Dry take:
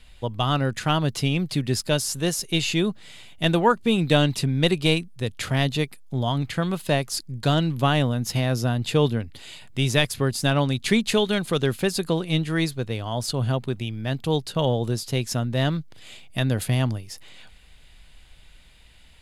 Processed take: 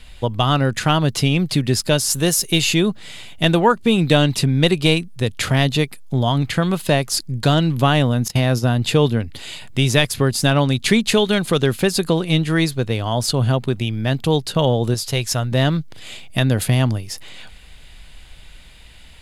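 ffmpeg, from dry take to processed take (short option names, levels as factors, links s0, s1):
-filter_complex "[0:a]asettb=1/sr,asplit=3[s0][s1][s2];[s0]atrim=end=2.104[s3];[s1]atrim=start=2.1:end=2.75,asetpts=PTS-STARTPTS,afade=t=in:d=0.004:c=qsin,afade=t=out:st=0.646:d=0.004:c=qsin,highshelf=f=11000:g=11.5[s4];[s2]atrim=start=2.746[s5];[s3][s4]acrossfade=d=0.004:c1=hsin:c2=qsin[s6];[s6][s5]acrossfade=d=0.004:c1=qsin:c2=hsin,asettb=1/sr,asplit=3[s7][s8][s9];[s7]atrim=end=8.284[s10];[s8]atrim=start=8.28:end=8.7,asetpts=PTS-STARTPTS,afade=t=in:d=0.004:c=qsin,afade=t=out:st=0.416:d=0.004:c=qsin,agate=range=0.1:threshold=0.0398:ratio=16:release=100:detection=peak[s11];[s9]atrim=start=8.696[s12];[s10][s11]acrossfade=d=0.004:c1=hsin:c2=qsin[s13];[s13][s12]acrossfade=d=0.004:c1=qsin:c2=hsin,asettb=1/sr,asplit=3[s14][s15][s16];[s14]atrim=end=14.944[s17];[s15]atrim=start=14.94:end=15.52,asetpts=PTS-STARTPTS,afade=t=in:d=0.004:c=qsin,afade=t=out:st=0.576:d=0.004:c=qsin,equalizer=f=240:t=o:w=1.4:g=-10[s18];[s16]atrim=start=15.516[s19];[s17][s18]acrossfade=d=0.004:c1=hsin:c2=qsin[s20];[s20][s19]acrossfade=d=0.004:c1=qsin:c2=hsin,acompressor=threshold=0.0501:ratio=1.5,volume=2.66"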